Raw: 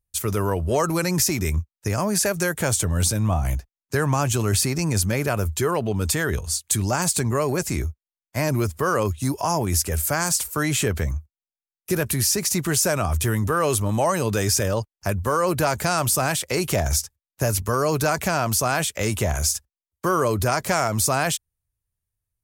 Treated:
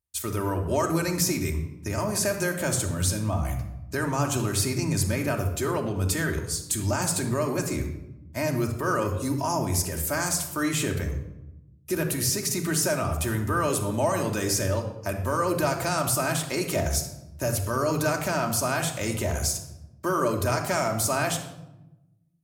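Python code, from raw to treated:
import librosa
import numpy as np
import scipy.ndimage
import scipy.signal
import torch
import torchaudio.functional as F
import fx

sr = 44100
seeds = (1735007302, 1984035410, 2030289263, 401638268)

y = scipy.signal.sosfilt(scipy.signal.butter(2, 80.0, 'highpass', fs=sr, output='sos'), x)
y = fx.room_shoebox(y, sr, seeds[0], volume_m3=3700.0, walls='furnished', distance_m=2.7)
y = y * 10.0 ** (-6.0 / 20.0)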